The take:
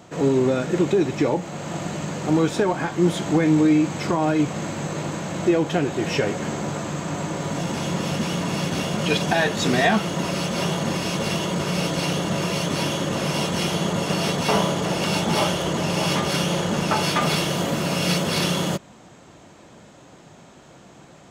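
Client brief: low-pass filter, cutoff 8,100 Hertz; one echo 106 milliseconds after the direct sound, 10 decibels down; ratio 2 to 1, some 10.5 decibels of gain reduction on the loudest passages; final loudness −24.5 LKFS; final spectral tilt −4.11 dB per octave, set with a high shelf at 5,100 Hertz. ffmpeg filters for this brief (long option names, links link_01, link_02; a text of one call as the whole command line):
ffmpeg -i in.wav -af "lowpass=8100,highshelf=frequency=5100:gain=7.5,acompressor=threshold=-34dB:ratio=2,aecho=1:1:106:0.316,volume=5.5dB" out.wav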